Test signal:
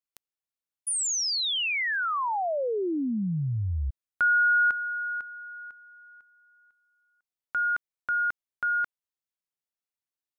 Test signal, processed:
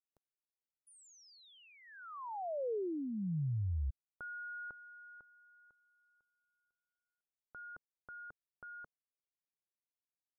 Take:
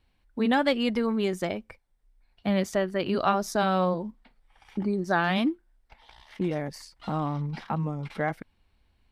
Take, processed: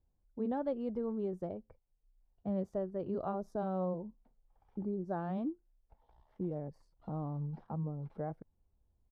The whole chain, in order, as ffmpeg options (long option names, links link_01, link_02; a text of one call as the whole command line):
ffmpeg -i in.wav -af "firequalizer=gain_entry='entry(150,0);entry(240,-5);entry(450,-1);entry(2100,-27)':delay=0.05:min_phase=1,volume=-7dB" out.wav